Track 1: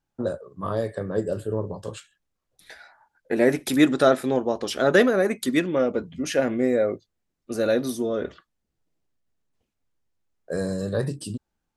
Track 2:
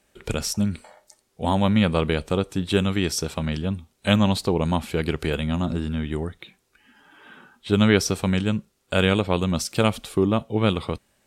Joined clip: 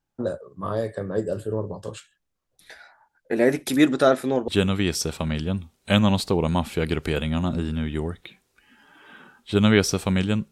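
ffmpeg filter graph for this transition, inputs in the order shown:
ffmpeg -i cue0.wav -i cue1.wav -filter_complex "[0:a]apad=whole_dur=10.51,atrim=end=10.51,atrim=end=4.482[link_01];[1:a]atrim=start=2.648:end=8.68[link_02];[link_01][link_02]acrossfade=duration=0.004:curve1=hsin:curve2=hsin" out.wav

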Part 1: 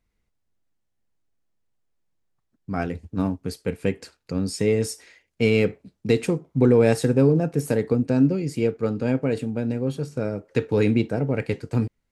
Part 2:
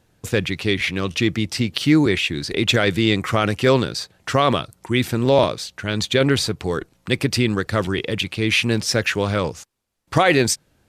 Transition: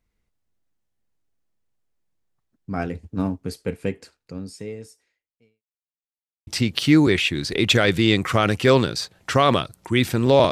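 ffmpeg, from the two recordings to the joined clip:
ffmpeg -i cue0.wav -i cue1.wav -filter_complex "[0:a]apad=whole_dur=10.51,atrim=end=10.51,asplit=2[link_01][link_02];[link_01]atrim=end=5.63,asetpts=PTS-STARTPTS,afade=type=out:start_time=3.66:duration=1.97:curve=qua[link_03];[link_02]atrim=start=5.63:end=6.47,asetpts=PTS-STARTPTS,volume=0[link_04];[1:a]atrim=start=1.46:end=5.5,asetpts=PTS-STARTPTS,afade=type=in:duration=0.004:curve=hsin[link_05];[link_03][link_04][link_05]concat=n=3:v=0:a=1" out.wav

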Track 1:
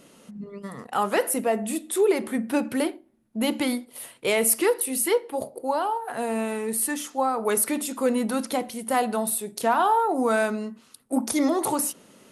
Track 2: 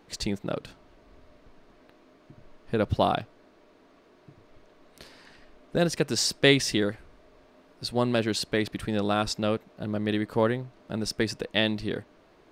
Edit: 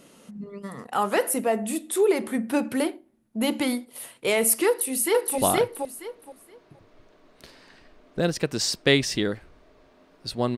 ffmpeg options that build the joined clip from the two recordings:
ffmpeg -i cue0.wav -i cue1.wav -filter_complex "[0:a]apad=whole_dur=10.57,atrim=end=10.57,atrim=end=5.382[link_01];[1:a]atrim=start=2.948:end=8.14[link_02];[link_01][link_02]acrossfade=duration=0.004:curve1=hsin:curve2=hsin,asplit=2[link_03][link_04];[link_04]afade=type=in:start_time=4.67:duration=0.01,afade=type=out:start_time=5.38:duration=0.01,aecho=0:1:470|940|1410:0.891251|0.17825|0.03565[link_05];[link_03][link_05]amix=inputs=2:normalize=0" out.wav

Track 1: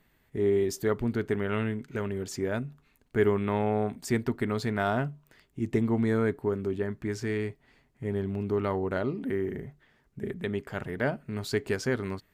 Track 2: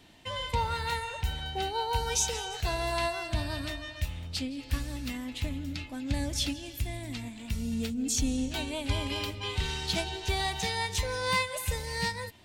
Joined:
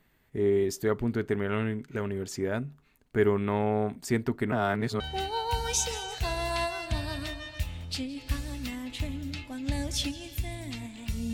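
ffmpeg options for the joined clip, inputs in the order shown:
ffmpeg -i cue0.wav -i cue1.wav -filter_complex "[0:a]apad=whole_dur=11.33,atrim=end=11.33,asplit=2[link_01][link_02];[link_01]atrim=end=4.522[link_03];[link_02]atrim=start=4.518:end=5.002,asetpts=PTS-STARTPTS,areverse[link_04];[1:a]atrim=start=1.418:end=7.75[link_05];[link_03][link_04]acrossfade=duration=0.004:curve1=hsin:curve2=hsin[link_06];[link_06][link_05]acrossfade=duration=0.004:curve1=hsin:curve2=hsin" out.wav

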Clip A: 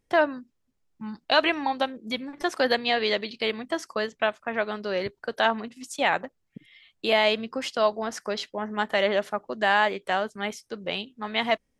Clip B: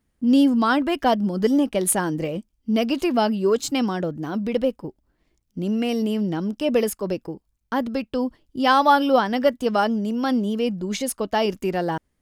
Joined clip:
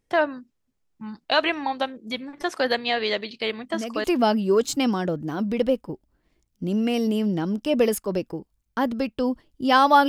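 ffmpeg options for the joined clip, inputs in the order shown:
ffmpeg -i cue0.wav -i cue1.wav -filter_complex "[1:a]asplit=2[link_01][link_02];[0:a]apad=whole_dur=10.08,atrim=end=10.08,atrim=end=4.042[link_03];[link_02]atrim=start=2.988:end=9.03[link_04];[link_01]atrim=start=2.55:end=2.99,asetpts=PTS-STARTPTS,volume=-10.5dB,afade=type=in:duration=0.004:curve=hsin,afade=type=out:start_time=0.436:duration=0.004:curve=hsin,adelay=3600[link_05];[link_03][link_04]acrossfade=duration=0.004:curve1=hsin:curve2=hsin[link_06];[link_06][link_05]amix=inputs=2:normalize=0" out.wav

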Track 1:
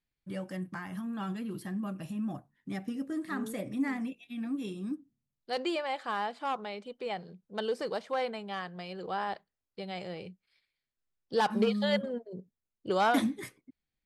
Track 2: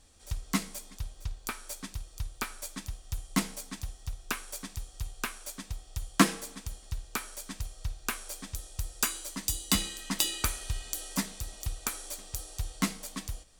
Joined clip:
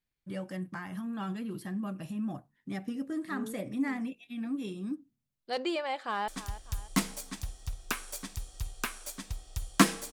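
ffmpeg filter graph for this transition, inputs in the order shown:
ffmpeg -i cue0.wav -i cue1.wav -filter_complex "[0:a]apad=whole_dur=10.12,atrim=end=10.12,atrim=end=6.282[link_01];[1:a]atrim=start=2.678:end=6.52[link_02];[link_01][link_02]acrossfade=duration=0.004:curve1=hsin:curve2=hsin,asplit=2[link_03][link_04];[link_04]afade=type=in:start_time=5.95:duration=0.01,afade=type=out:start_time=6.28:duration=0.01,aecho=0:1:300|600|900|1200:0.188365|0.0847642|0.0381439|0.0171648[link_05];[link_03][link_05]amix=inputs=2:normalize=0" out.wav

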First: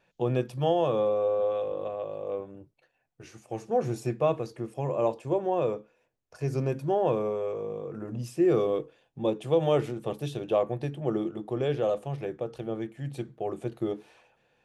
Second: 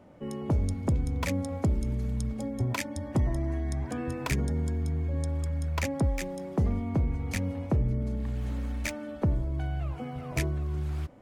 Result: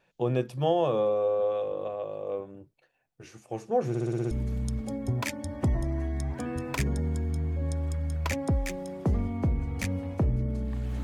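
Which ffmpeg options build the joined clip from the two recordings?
ffmpeg -i cue0.wav -i cue1.wav -filter_complex "[0:a]apad=whole_dur=11.03,atrim=end=11.03,asplit=7[link_01][link_02][link_03][link_04][link_05][link_06][link_07];[link_01]atrim=end=3.952[link_08];[link_02]atrim=start=3.888:end=3.952[link_09];[link_03]atrim=start=3.888:end=3.952[link_10];[link_04]atrim=start=3.888:end=3.952[link_11];[link_05]atrim=start=3.888:end=3.952[link_12];[link_06]atrim=start=3.888:end=3.952[link_13];[link_07]atrim=start=3.888:end=3.952[link_14];[1:a]atrim=start=1.828:end=8.55[link_15];[link_08][link_09]acrossfade=duration=0.004:curve1=hsin:curve2=hsin[link_16];[link_16][link_10]acrossfade=duration=0.004:curve1=hsin:curve2=hsin[link_17];[link_17][link_11]acrossfade=duration=0.004:curve1=hsin:curve2=hsin[link_18];[link_18][link_12]acrossfade=duration=0.004:curve1=hsin:curve2=hsin[link_19];[link_19][link_13]acrossfade=duration=0.004:curve1=hsin:curve2=hsin[link_20];[link_20][link_14]acrossfade=duration=0.004:curve1=hsin:curve2=hsin[link_21];[link_21][link_15]acrossfade=duration=0.004:curve1=hsin:curve2=hsin" out.wav

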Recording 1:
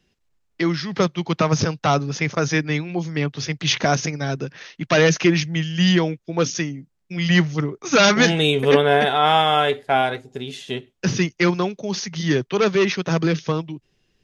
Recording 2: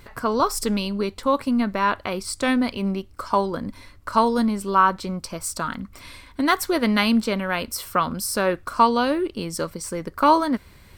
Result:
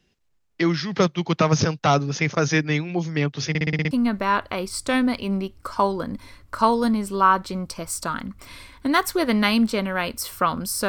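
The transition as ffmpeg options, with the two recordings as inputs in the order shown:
ffmpeg -i cue0.wav -i cue1.wav -filter_complex "[0:a]apad=whole_dur=10.88,atrim=end=10.88,asplit=7[link_01][link_02][link_03][link_04][link_05][link_06][link_07];[link_01]atrim=end=3.552[link_08];[link_02]atrim=start=3.488:end=3.552[link_09];[link_03]atrim=start=3.488:end=3.552[link_10];[link_04]atrim=start=3.488:end=3.552[link_11];[link_05]atrim=start=3.488:end=3.552[link_12];[link_06]atrim=start=3.488:end=3.552[link_13];[link_07]atrim=start=3.488:end=3.552[link_14];[1:a]atrim=start=1.448:end=8.42[link_15];[link_08][link_09]acrossfade=duration=0.004:curve1=hsin:curve2=hsin[link_16];[link_16][link_10]acrossfade=duration=0.004:curve1=hsin:curve2=hsin[link_17];[link_17][link_11]acrossfade=duration=0.004:curve1=hsin:curve2=hsin[link_18];[link_18][link_12]acrossfade=duration=0.004:curve1=hsin:curve2=hsin[link_19];[link_19][link_13]acrossfade=duration=0.004:curve1=hsin:curve2=hsin[link_20];[link_20][link_14]acrossfade=duration=0.004:curve1=hsin:curve2=hsin[link_21];[link_21][link_15]acrossfade=duration=0.004:curve1=hsin:curve2=hsin" out.wav

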